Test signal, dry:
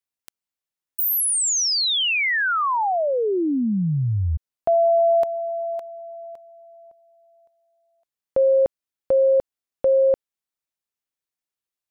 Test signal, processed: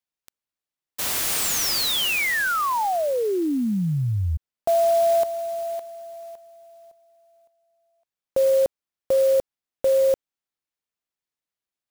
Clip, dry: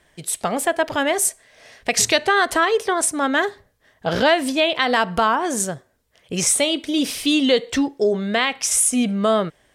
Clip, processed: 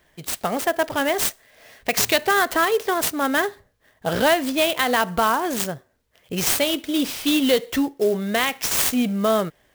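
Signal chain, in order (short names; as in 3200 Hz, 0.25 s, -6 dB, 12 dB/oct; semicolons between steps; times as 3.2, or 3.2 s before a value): clock jitter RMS 0.027 ms; gain -1.5 dB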